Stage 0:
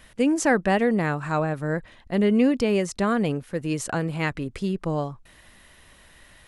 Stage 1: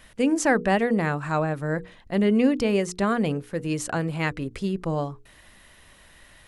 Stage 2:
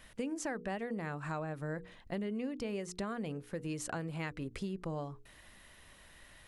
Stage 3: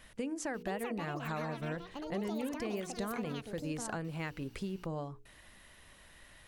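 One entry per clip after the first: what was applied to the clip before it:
hum notches 60/120/180/240/300/360/420/480 Hz
compression 6:1, threshold -30 dBFS, peak gain reduction 14 dB; trim -5.5 dB
ever faster or slower copies 539 ms, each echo +7 st, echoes 2, each echo -6 dB

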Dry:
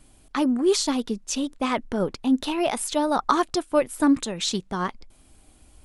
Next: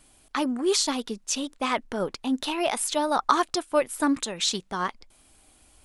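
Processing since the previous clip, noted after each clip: bass shelf 410 Hz -10 dB; trim +1.5 dB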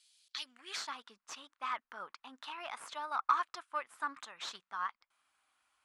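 amplifier tone stack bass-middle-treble 5-5-5; valve stage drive 23 dB, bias 0.5; band-pass sweep 4.2 kHz -> 1.2 kHz, 0.38–0.89 s; trim +9.5 dB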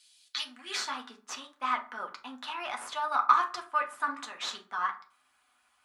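reverberation RT60 0.40 s, pre-delay 4 ms, DRR 2 dB; trim +5.5 dB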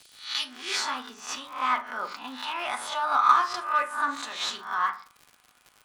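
reverse spectral sustain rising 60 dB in 0.43 s; crackle 100 per s -42 dBFS; in parallel at -5.5 dB: saturation -24.5 dBFS, distortion -8 dB

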